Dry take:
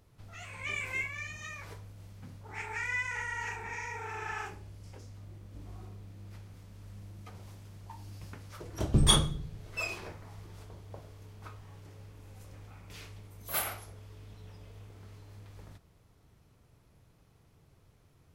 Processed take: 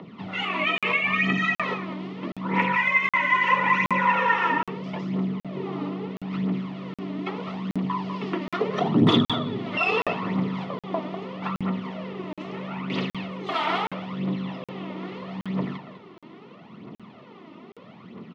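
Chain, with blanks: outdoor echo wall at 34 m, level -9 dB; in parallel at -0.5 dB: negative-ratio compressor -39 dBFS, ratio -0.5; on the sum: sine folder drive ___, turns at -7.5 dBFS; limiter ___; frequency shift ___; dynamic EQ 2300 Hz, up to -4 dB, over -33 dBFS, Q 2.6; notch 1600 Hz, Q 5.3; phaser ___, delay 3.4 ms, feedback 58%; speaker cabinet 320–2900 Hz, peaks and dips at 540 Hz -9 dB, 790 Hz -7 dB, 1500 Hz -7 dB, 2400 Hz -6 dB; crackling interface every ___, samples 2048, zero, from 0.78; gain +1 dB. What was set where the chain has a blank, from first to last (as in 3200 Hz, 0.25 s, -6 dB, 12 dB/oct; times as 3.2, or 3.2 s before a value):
12 dB, -9.5 dBFS, +89 Hz, 0.77 Hz, 0.77 s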